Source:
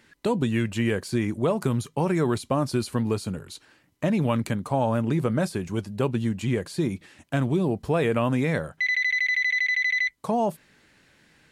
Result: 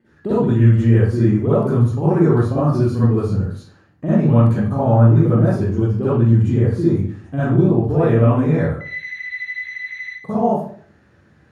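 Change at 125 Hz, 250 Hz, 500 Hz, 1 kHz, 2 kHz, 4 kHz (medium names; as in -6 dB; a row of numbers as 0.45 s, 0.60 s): +13.5 dB, +8.5 dB, +7.5 dB, +5.0 dB, -4.0 dB, no reading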